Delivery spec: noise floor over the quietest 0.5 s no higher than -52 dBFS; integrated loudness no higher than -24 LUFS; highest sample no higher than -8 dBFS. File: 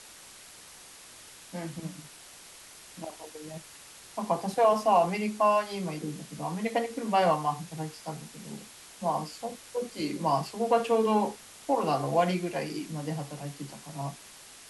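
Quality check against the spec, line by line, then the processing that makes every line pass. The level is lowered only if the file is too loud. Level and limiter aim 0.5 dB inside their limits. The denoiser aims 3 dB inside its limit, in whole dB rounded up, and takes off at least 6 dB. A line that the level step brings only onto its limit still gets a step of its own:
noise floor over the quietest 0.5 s -50 dBFS: fail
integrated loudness -29.5 LUFS: pass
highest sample -11.5 dBFS: pass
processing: noise reduction 6 dB, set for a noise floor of -50 dBFS

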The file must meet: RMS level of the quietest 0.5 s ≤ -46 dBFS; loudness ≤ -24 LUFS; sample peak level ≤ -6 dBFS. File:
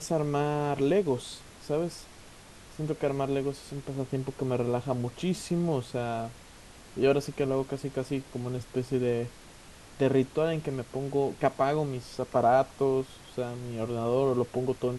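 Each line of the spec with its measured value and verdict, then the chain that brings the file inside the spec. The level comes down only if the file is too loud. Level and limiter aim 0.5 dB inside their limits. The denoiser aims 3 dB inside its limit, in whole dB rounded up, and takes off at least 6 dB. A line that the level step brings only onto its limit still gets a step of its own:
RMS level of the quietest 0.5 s -50 dBFS: pass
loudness -30.0 LUFS: pass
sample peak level -11.0 dBFS: pass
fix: none needed

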